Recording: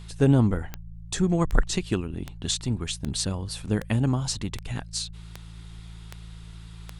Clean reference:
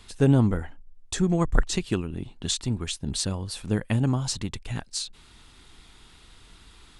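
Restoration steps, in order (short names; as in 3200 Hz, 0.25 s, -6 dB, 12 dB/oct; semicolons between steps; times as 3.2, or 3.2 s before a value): de-click; de-hum 55.6 Hz, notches 3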